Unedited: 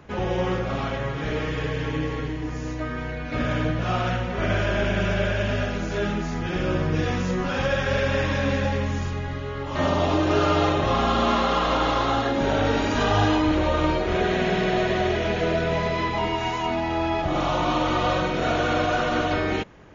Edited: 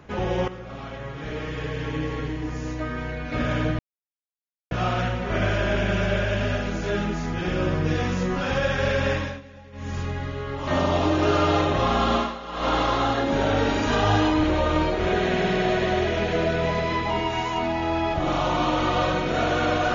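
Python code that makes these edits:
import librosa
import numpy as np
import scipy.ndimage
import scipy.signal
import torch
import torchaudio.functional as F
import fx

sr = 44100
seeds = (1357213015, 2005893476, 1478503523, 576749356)

y = fx.edit(x, sr, fx.fade_in_from(start_s=0.48, length_s=1.85, floor_db=-13.5),
    fx.insert_silence(at_s=3.79, length_s=0.92),
    fx.fade_down_up(start_s=8.19, length_s=0.91, db=-21.5, fade_s=0.3),
    fx.fade_down_up(start_s=11.24, length_s=0.53, db=-15.0, fade_s=0.26, curve='qua'), tone=tone)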